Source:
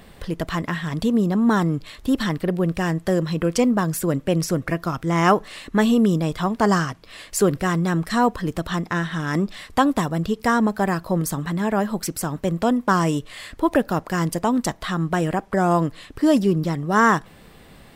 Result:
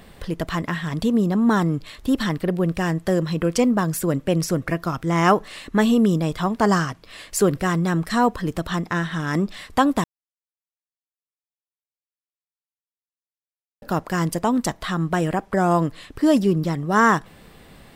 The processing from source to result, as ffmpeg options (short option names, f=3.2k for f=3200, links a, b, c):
-filter_complex "[0:a]asplit=3[a][b][c];[a]atrim=end=10.04,asetpts=PTS-STARTPTS,afade=t=out:st=10.036:d=0.004:c=hsin[d];[b]atrim=start=10.04:end=13.82,asetpts=PTS-STARTPTS,volume=0[e];[c]atrim=start=13.82,asetpts=PTS-STARTPTS,afade=t=in:d=0.004:c=hsin[f];[d][e][f]concat=n=3:v=0:a=1"